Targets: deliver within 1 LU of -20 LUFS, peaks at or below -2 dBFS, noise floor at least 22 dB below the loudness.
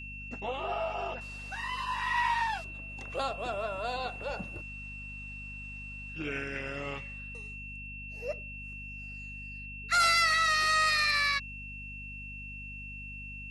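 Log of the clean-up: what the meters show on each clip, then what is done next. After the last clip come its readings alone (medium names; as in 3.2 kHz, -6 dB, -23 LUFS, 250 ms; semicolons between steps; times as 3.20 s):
hum 50 Hz; highest harmonic 250 Hz; hum level -44 dBFS; steady tone 2.7 kHz; tone level -42 dBFS; loudness -32.0 LUFS; peak level -17.5 dBFS; loudness target -20.0 LUFS
-> hum notches 50/100/150/200/250 Hz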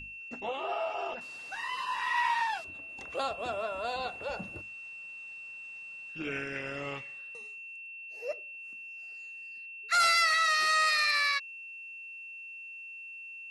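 hum not found; steady tone 2.7 kHz; tone level -42 dBFS
-> band-stop 2.7 kHz, Q 30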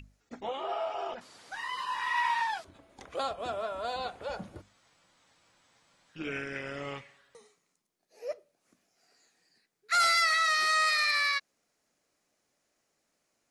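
steady tone not found; loudness -29.5 LUFS; peak level -18.0 dBFS; loudness target -20.0 LUFS
-> trim +9.5 dB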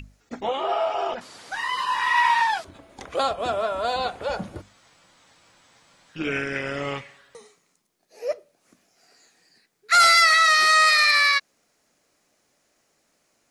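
loudness -20.5 LUFS; peak level -8.5 dBFS; noise floor -69 dBFS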